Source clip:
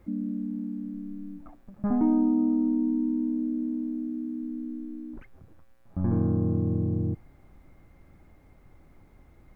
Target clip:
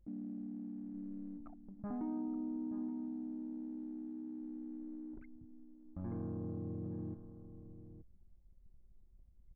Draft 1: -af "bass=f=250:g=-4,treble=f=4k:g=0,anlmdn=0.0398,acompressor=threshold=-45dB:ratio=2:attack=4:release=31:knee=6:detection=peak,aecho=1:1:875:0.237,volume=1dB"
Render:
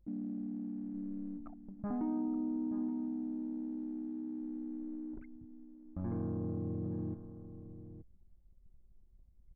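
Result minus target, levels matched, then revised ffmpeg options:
compressor: peak gain reduction -4 dB
-af "bass=f=250:g=-4,treble=f=4k:g=0,anlmdn=0.0398,acompressor=threshold=-53.5dB:ratio=2:attack=4:release=31:knee=6:detection=peak,aecho=1:1:875:0.237,volume=1dB"

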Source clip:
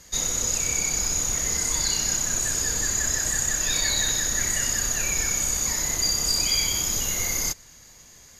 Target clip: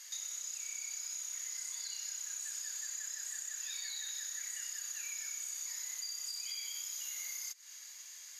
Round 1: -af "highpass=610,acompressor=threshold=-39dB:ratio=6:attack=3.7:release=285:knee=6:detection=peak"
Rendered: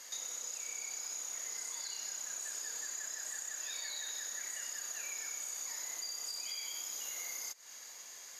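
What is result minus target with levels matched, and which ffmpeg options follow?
500 Hz band +16.5 dB
-af "highpass=1.8k,acompressor=threshold=-39dB:ratio=6:attack=3.7:release=285:knee=6:detection=peak"

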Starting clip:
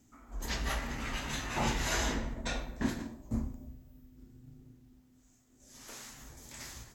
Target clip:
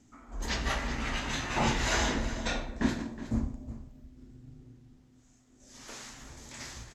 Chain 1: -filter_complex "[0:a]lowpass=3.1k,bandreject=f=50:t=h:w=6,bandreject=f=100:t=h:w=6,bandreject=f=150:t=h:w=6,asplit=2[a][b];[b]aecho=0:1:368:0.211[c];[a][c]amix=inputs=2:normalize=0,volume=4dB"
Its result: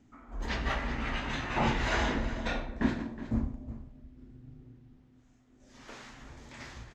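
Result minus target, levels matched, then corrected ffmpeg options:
8000 Hz band -11.5 dB
-filter_complex "[0:a]lowpass=7.1k,bandreject=f=50:t=h:w=6,bandreject=f=100:t=h:w=6,bandreject=f=150:t=h:w=6,asplit=2[a][b];[b]aecho=0:1:368:0.211[c];[a][c]amix=inputs=2:normalize=0,volume=4dB"

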